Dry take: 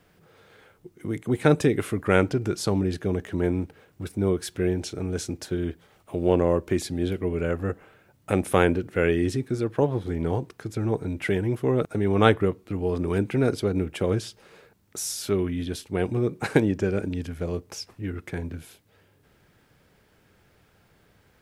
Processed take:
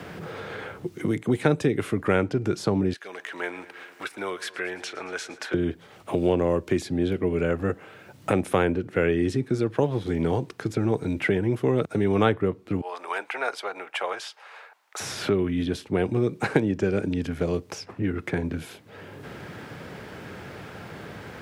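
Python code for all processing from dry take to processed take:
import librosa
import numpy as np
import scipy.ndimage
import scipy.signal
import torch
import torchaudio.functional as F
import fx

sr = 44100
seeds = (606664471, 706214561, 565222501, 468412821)

y = fx.chain(x, sr, fx.highpass(hz=1300.0, slope=12),
    fx.echo_feedback(ms=111, feedback_pct=60, wet_db=-19.5), at=(2.93, 5.54))
y = fx.chain(y, sr, fx.cheby1_highpass(hz=790.0, order=3),
    fx.band_widen(depth_pct=40), at=(12.81, 15.0))
y = scipy.signal.sosfilt(scipy.signal.butter(2, 95.0, 'highpass', fs=sr, output='sos'), y)
y = fx.high_shelf(y, sr, hz=8300.0, db=-11.5)
y = fx.band_squash(y, sr, depth_pct=70)
y = y * 10.0 ** (1.5 / 20.0)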